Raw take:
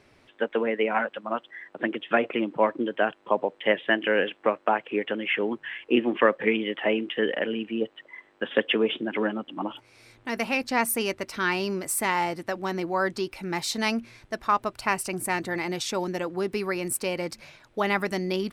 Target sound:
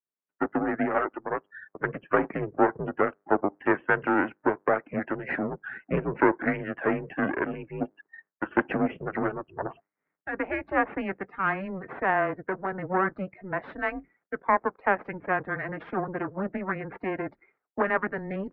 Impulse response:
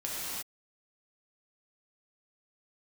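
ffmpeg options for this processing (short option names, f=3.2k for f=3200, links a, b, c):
-af "aeval=exprs='max(val(0),0)':c=same,aemphasis=mode=production:type=75fm,agate=range=-33dB:threshold=-45dB:ratio=3:detection=peak,lowshelf=f=500:g=4.5,afftdn=nr=20:nf=-42,highpass=f=430:t=q:w=0.5412,highpass=f=430:t=q:w=1.307,lowpass=f=2k:t=q:w=0.5176,lowpass=f=2k:t=q:w=0.7071,lowpass=f=2k:t=q:w=1.932,afreqshift=-190,volume=4.5dB"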